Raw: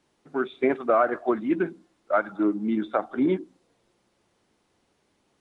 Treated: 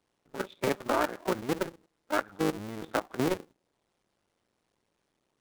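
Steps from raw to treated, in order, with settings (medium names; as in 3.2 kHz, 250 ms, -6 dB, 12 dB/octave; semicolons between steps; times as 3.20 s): cycle switcher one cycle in 2, muted; level held to a coarse grid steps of 13 dB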